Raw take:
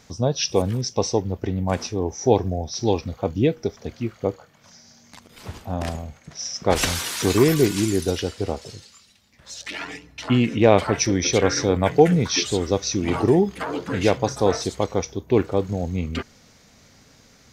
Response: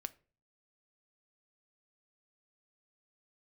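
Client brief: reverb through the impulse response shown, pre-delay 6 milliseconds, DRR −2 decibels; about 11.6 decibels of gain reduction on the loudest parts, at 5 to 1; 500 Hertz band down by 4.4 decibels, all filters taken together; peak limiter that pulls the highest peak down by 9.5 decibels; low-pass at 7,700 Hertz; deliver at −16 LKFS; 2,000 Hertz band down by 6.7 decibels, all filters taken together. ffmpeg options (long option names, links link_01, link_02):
-filter_complex "[0:a]lowpass=7700,equalizer=frequency=500:width_type=o:gain=-5,equalizer=frequency=2000:width_type=o:gain=-8.5,acompressor=threshold=-26dB:ratio=5,alimiter=limit=-22dB:level=0:latency=1,asplit=2[link_01][link_02];[1:a]atrim=start_sample=2205,adelay=6[link_03];[link_02][link_03]afir=irnorm=-1:irlink=0,volume=5dB[link_04];[link_01][link_04]amix=inputs=2:normalize=0,volume=13.5dB"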